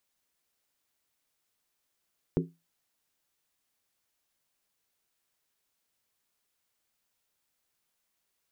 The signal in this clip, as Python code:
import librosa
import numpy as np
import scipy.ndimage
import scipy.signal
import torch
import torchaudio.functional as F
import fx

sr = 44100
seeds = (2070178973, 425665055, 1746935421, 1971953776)

y = fx.strike_skin(sr, length_s=0.63, level_db=-22.5, hz=167.0, decay_s=0.25, tilt_db=2, modes=5)